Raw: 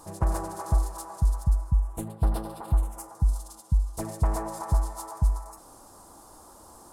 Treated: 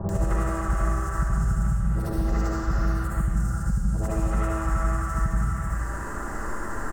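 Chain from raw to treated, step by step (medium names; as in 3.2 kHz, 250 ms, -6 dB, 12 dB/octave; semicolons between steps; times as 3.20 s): short-time spectra conjugated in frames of 153 ms; resonant high shelf 6.8 kHz -8 dB, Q 3; band-stop 2.3 kHz, Q 5.2; comb 5.1 ms, depth 30%; formant shift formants +6 st; bands offset in time lows, highs 90 ms, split 840 Hz; algorithmic reverb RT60 1.2 s, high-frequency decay 0.65×, pre-delay 40 ms, DRR -6 dB; three bands compressed up and down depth 100%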